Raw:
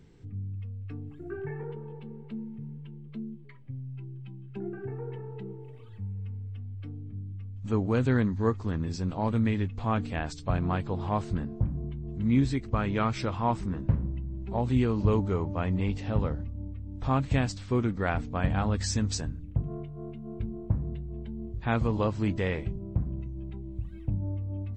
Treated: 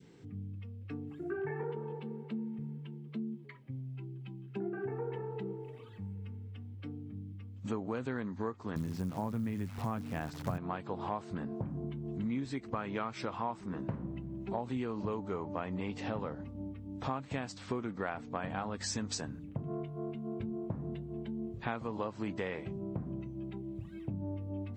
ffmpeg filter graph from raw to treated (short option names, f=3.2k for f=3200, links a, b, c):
-filter_complex "[0:a]asettb=1/sr,asplit=3[a][b][c];[a]atrim=end=8.764[d];[b]atrim=start=8.76:end=10.58,asetpts=PTS-STARTPTS,afade=t=in:d=0.004:c=qsin,afade=t=out:st=1.816:d=0.004:c=qsin,bass=f=250:g=12,treble=f=4k:g=-10,acrusher=bits=8:dc=4:mix=0:aa=0.000001[e];[c]atrim=start=10.576[f];[d][e]acrossfade=d=0.004:c1=hsin:c2=qsin[g];[g][f]acrossfade=d=0.004:c1=qsin:c2=hsin,highpass=170,adynamicequalizer=threshold=0.00631:dfrequency=960:dqfactor=0.7:tfrequency=960:tqfactor=0.7:attack=5:release=100:ratio=0.375:range=2.5:mode=boostabove:tftype=bell,acompressor=threshold=-36dB:ratio=6,volume=2.5dB"